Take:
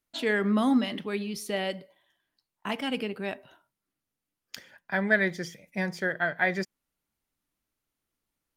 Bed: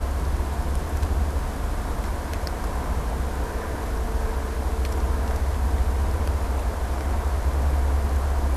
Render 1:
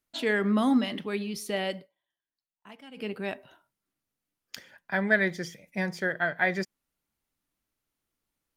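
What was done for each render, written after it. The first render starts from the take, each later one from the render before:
0:01.77–0:03.08: duck −17 dB, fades 0.13 s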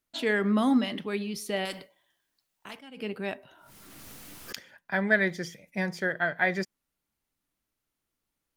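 0:01.65–0:02.79: every bin compressed towards the loudest bin 2 to 1
0:03.34–0:04.56: background raised ahead of every attack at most 21 dB per second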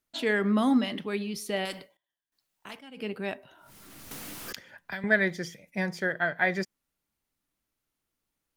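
0:01.59–0:02.70: duck −17.5 dB, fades 0.38 s logarithmic
0:04.11–0:05.04: multiband upward and downward compressor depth 100%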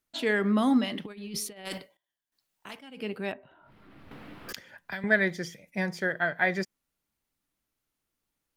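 0:01.05–0:01.78: compressor whose output falls as the input rises −37 dBFS, ratio −0.5
0:03.32–0:04.49: high-frequency loss of the air 450 metres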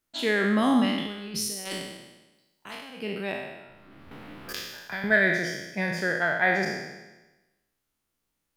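peak hold with a decay on every bin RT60 1.10 s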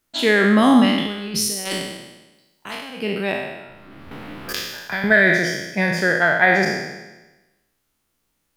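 level +8.5 dB
brickwall limiter −3 dBFS, peak gain reduction 3 dB

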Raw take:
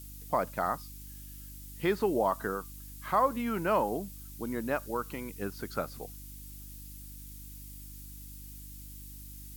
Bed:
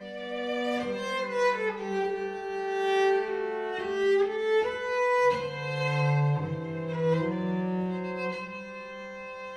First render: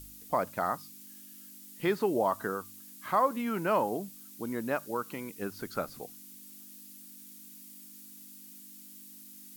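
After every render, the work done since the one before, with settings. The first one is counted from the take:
hum removal 50 Hz, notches 3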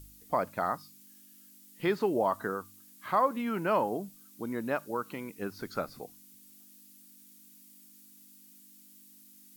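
noise reduction from a noise print 6 dB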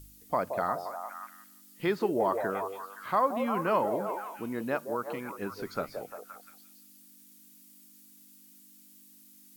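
echo through a band-pass that steps 174 ms, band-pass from 520 Hz, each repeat 0.7 octaves, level −3.5 dB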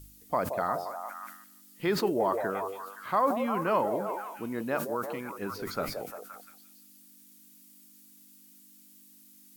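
level that may fall only so fast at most 77 dB per second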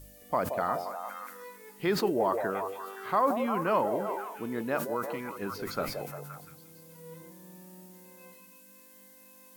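mix in bed −22 dB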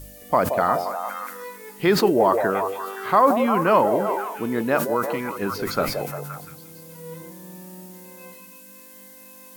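level +9.5 dB

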